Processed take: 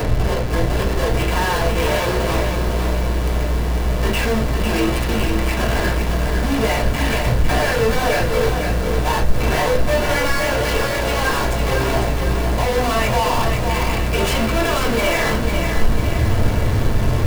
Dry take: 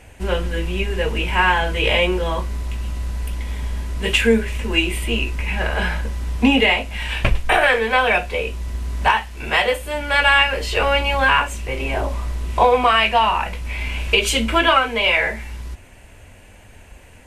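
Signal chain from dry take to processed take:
high-pass filter 69 Hz 12 dB per octave
parametric band 3,500 Hz −3.5 dB 1 octave
in parallel at −0.5 dB: upward compression, threshold −19 dBFS
on the sum: brickwall limiter −5 dBFS, peak gain reduction 7 dB
downward compressor 12 to 1, threshold −21 dBFS, peak gain reduction 12.5 dB
comparator with hysteresis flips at −27.5 dBFS
convolution reverb RT60 0.25 s, pre-delay 3 ms, DRR −2.5 dB
feedback echo at a low word length 502 ms, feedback 55%, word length 6 bits, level −5 dB

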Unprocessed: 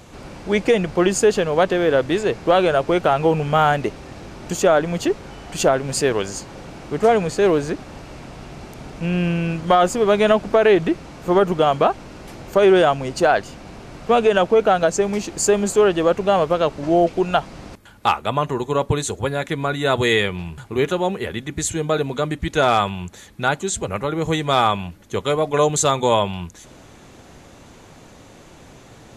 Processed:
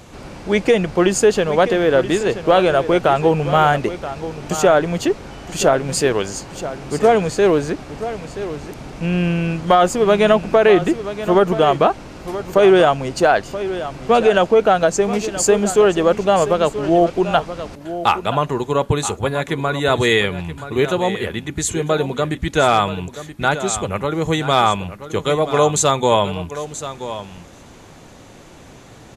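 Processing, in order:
single-tap delay 978 ms −12.5 dB
level +2 dB

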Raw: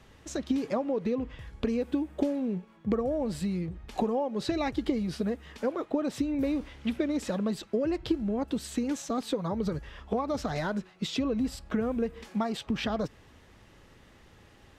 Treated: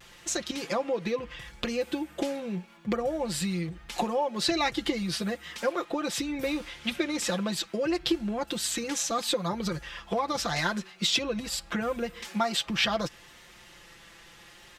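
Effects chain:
tilt shelving filter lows −7.5 dB
comb filter 5.8 ms, depth 71%
pitch vibrato 0.76 Hz 38 cents
level +3 dB

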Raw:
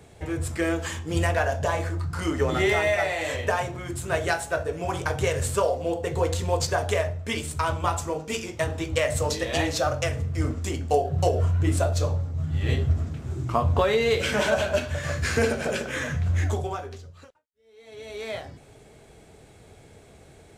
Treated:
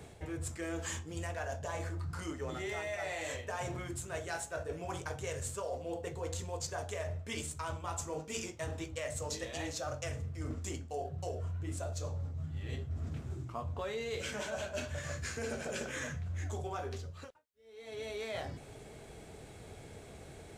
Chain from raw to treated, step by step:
dynamic equaliser 6,900 Hz, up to +7 dB, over −50 dBFS, Q 1.9
reversed playback
downward compressor 10 to 1, threshold −36 dBFS, peak gain reduction 20 dB
reversed playback

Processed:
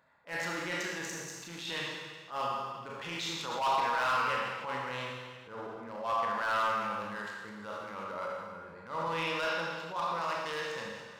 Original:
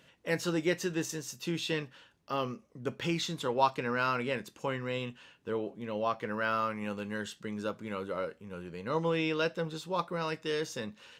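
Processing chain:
adaptive Wiener filter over 15 samples
low shelf with overshoot 570 Hz −10.5 dB, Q 1.5
four-comb reverb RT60 1.6 s, combs from 27 ms, DRR −1.5 dB
hard clipping −24 dBFS, distortion −13 dB
transient designer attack −9 dB, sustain +3 dB

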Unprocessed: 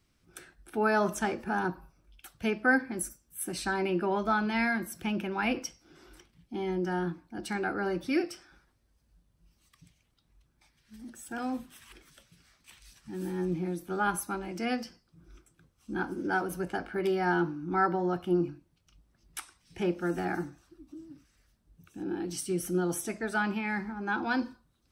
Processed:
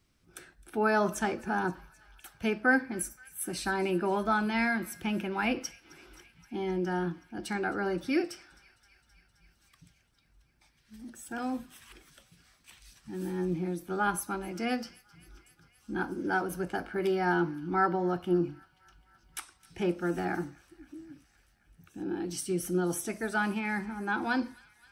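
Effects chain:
delay with a high-pass on its return 262 ms, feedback 76%, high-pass 1,900 Hz, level −21 dB

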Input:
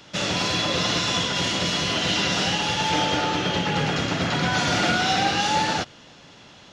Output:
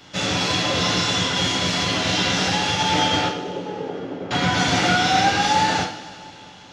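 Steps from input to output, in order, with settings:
0:03.28–0:04.31: resonant band-pass 420 Hz, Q 2.3
coupled-rooms reverb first 0.42 s, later 2.7 s, from −18 dB, DRR −2 dB
level −1.5 dB

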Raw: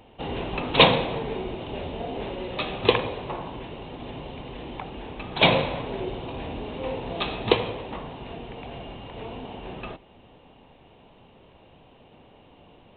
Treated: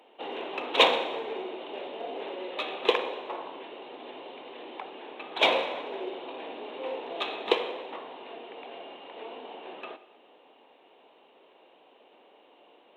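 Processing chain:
in parallel at −7.5 dB: asymmetric clip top −25.5 dBFS
on the sum: high-pass filter 330 Hz 24 dB per octave
convolution reverb RT60 1.1 s, pre-delay 41 ms, DRR 14 dB
level −6 dB

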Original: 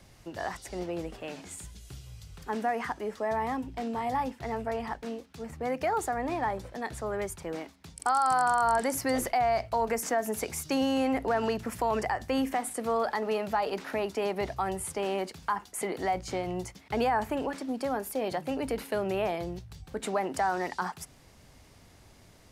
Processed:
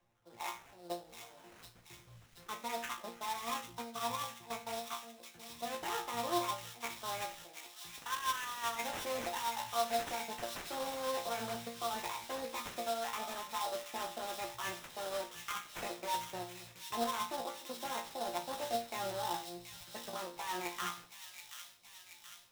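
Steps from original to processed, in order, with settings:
low-shelf EQ 310 Hz −9.5 dB
formants moved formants +4 semitones
output level in coarse steps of 18 dB
spectral peaks only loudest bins 64
resonators tuned to a chord A#2 fifth, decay 0.37 s
sample-rate reduction 4,600 Hz, jitter 20%
delay with a high-pass on its return 728 ms, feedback 62%, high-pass 2,600 Hz, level −5 dB
level +12.5 dB

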